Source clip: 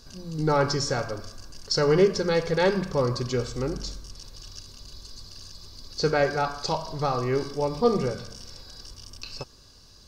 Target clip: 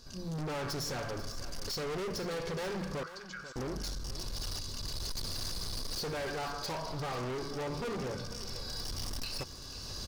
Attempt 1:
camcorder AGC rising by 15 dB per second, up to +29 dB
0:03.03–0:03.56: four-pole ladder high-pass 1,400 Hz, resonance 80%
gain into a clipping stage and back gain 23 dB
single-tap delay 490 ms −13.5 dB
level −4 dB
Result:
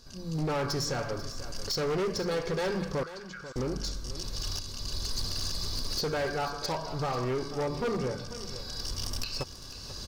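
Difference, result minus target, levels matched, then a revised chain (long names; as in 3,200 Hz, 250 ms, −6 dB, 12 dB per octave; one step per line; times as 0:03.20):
gain into a clipping stage and back: distortion −5 dB
camcorder AGC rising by 15 dB per second, up to +29 dB
0:03.03–0:03.56: four-pole ladder high-pass 1,400 Hz, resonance 80%
gain into a clipping stage and back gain 31 dB
single-tap delay 490 ms −13.5 dB
level −4 dB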